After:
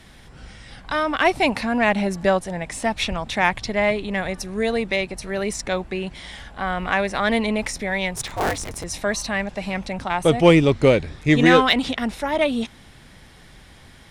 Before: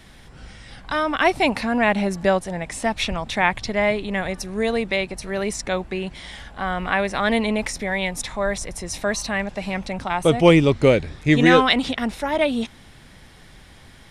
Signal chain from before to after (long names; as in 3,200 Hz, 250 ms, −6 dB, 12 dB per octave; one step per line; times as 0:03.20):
0:08.16–0:08.84: sub-harmonics by changed cycles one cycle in 2, inverted
harmonic generator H 8 −33 dB, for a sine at −1.5 dBFS